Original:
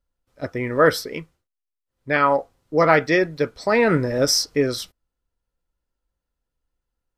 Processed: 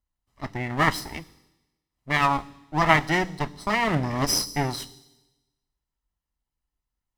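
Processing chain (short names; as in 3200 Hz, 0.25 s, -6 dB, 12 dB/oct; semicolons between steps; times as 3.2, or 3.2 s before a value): minimum comb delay 1 ms; added harmonics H 3 -19 dB, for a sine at -2.5 dBFS; on a send: band shelf 1200 Hz -10.5 dB 2.7 oct + reverb RT60 1.1 s, pre-delay 10 ms, DRR 20.5 dB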